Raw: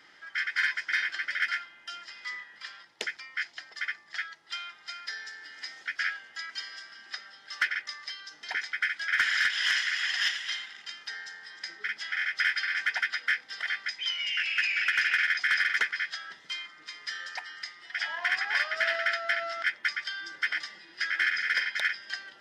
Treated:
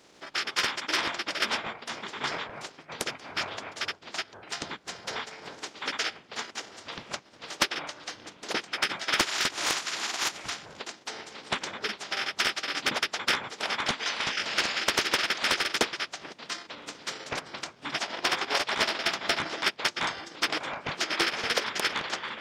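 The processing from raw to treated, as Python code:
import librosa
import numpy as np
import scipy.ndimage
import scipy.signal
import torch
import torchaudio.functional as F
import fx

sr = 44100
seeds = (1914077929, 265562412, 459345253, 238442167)

y = fx.spec_clip(x, sr, under_db=28)
y = fx.peak_eq(y, sr, hz=370.0, db=11.5, octaves=2.3)
y = fx.transient(y, sr, attack_db=5, sustain_db=-12)
y = fx.echo_pitch(y, sr, ms=109, semitones=-7, count=3, db_per_echo=-6.0)
y = F.gain(torch.from_numpy(y), -3.5).numpy()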